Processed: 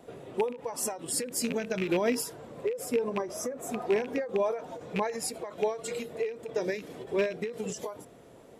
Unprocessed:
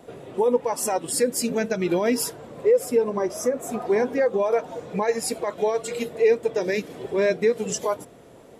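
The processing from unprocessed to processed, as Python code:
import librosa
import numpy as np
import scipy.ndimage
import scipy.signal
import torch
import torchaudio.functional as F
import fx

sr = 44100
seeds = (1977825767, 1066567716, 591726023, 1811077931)

y = fx.rattle_buzz(x, sr, strikes_db=-29.0, level_db=-19.0)
y = fx.end_taper(y, sr, db_per_s=120.0)
y = y * 10.0 ** (-4.5 / 20.0)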